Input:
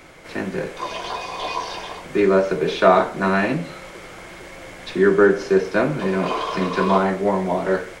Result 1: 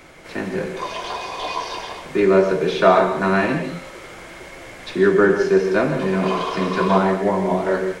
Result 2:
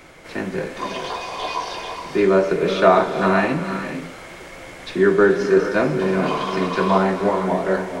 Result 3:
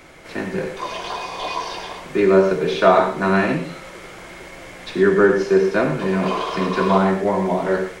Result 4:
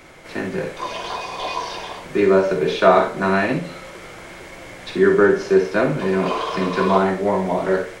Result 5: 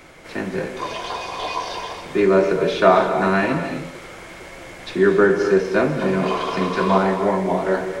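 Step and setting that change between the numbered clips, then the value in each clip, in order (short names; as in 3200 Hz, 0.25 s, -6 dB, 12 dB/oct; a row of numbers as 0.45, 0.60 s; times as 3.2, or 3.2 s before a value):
non-linear reverb, gate: 190, 500, 130, 80, 300 ms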